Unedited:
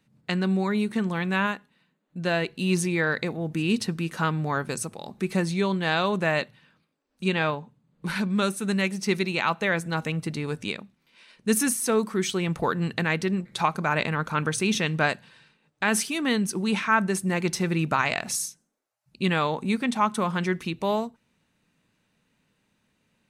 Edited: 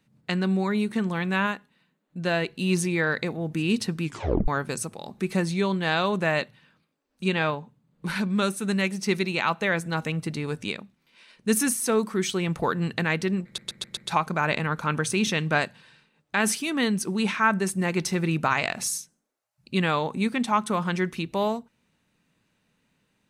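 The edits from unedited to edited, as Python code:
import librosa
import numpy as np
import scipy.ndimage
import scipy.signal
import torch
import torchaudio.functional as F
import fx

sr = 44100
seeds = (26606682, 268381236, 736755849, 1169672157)

y = fx.edit(x, sr, fx.tape_stop(start_s=4.04, length_s=0.44),
    fx.stutter(start_s=13.45, slice_s=0.13, count=5), tone=tone)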